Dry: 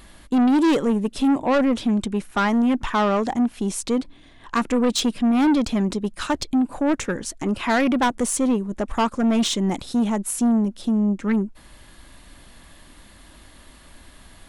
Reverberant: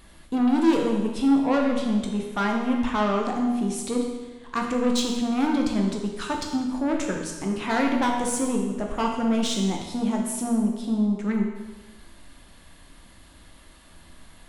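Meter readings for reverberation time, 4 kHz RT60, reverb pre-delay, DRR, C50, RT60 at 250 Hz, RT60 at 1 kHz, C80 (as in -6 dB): 1.2 s, 1.1 s, 12 ms, 0.5 dB, 3.5 dB, 1.2 s, 1.2 s, 5.5 dB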